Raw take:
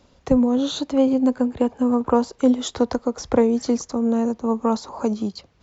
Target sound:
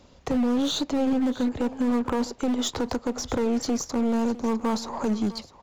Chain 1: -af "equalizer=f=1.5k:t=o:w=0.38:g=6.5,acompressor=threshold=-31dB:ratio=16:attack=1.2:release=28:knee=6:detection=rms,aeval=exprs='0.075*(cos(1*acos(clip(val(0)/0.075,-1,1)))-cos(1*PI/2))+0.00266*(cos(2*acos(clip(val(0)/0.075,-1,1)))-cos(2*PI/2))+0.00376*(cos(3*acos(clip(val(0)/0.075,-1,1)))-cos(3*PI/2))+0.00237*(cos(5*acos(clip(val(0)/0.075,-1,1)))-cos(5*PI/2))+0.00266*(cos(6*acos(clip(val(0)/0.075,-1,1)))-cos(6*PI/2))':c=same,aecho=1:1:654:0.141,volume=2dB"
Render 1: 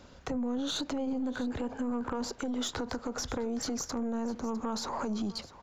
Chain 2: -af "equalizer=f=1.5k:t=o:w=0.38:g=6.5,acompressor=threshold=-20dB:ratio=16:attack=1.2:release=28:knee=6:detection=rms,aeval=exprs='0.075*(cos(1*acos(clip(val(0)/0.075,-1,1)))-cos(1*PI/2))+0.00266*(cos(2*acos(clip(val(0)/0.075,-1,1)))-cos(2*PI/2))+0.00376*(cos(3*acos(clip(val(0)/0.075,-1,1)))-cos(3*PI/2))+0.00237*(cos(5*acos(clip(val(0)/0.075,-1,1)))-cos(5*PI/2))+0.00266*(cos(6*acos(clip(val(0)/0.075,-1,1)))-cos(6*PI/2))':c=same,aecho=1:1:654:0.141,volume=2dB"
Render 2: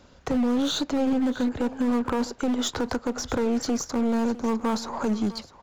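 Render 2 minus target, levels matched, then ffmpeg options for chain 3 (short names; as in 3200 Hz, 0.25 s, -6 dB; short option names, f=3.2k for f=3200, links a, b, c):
2000 Hz band +2.5 dB
-af "equalizer=f=1.5k:t=o:w=0.38:g=-2,acompressor=threshold=-20dB:ratio=16:attack=1.2:release=28:knee=6:detection=rms,aeval=exprs='0.075*(cos(1*acos(clip(val(0)/0.075,-1,1)))-cos(1*PI/2))+0.00266*(cos(2*acos(clip(val(0)/0.075,-1,1)))-cos(2*PI/2))+0.00376*(cos(3*acos(clip(val(0)/0.075,-1,1)))-cos(3*PI/2))+0.00237*(cos(5*acos(clip(val(0)/0.075,-1,1)))-cos(5*PI/2))+0.00266*(cos(6*acos(clip(val(0)/0.075,-1,1)))-cos(6*PI/2))':c=same,aecho=1:1:654:0.141,volume=2dB"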